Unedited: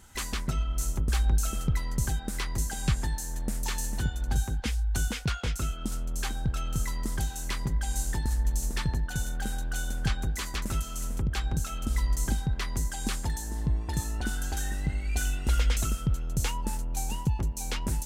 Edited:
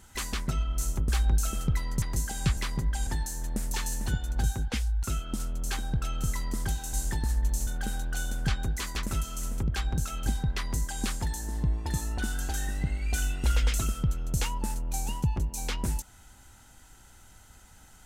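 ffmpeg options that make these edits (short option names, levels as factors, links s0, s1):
-filter_complex "[0:a]asplit=8[s0][s1][s2][s3][s4][s5][s6][s7];[s0]atrim=end=2.022[s8];[s1]atrim=start=2.438:end=2.992[s9];[s2]atrim=start=7.448:end=7.952[s10];[s3]atrim=start=2.988:end=4.952[s11];[s4]atrim=start=5.548:end=7.452[s12];[s5]atrim=start=7.948:end=8.692[s13];[s6]atrim=start=9.258:end=11.852[s14];[s7]atrim=start=12.288[s15];[s8][s9]acrossfade=d=0.004:c1=hsin:c2=hsin[s16];[s16][s10]acrossfade=d=0.004:c1=hsin:c2=hsin[s17];[s17][s11]acrossfade=d=0.004:c1=hsin:c2=hsin[s18];[s18][s12]acrossfade=d=0.004:c1=hsin:c2=hsin[s19];[s19][s13]acrossfade=d=0.004:c1=hsin:c2=hsin[s20];[s20][s14]acrossfade=d=0.004:c1=hsin:c2=hsin[s21];[s21][s15]acrossfade=d=0.004:c1=hsin:c2=hsin"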